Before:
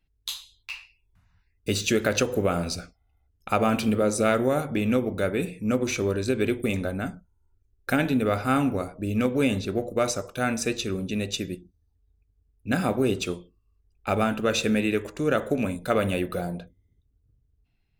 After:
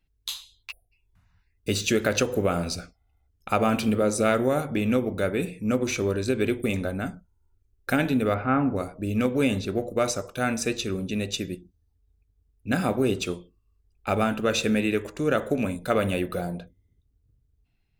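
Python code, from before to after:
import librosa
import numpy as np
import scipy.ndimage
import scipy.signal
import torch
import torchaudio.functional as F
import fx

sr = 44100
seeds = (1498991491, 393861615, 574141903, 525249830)

y = fx.spec_erase(x, sr, start_s=0.71, length_s=0.21, low_hz=760.0, high_hz=9600.0)
y = fx.lowpass(y, sr, hz=fx.line((8.33, 3000.0), (8.75, 1600.0)), slope=24, at=(8.33, 8.75), fade=0.02)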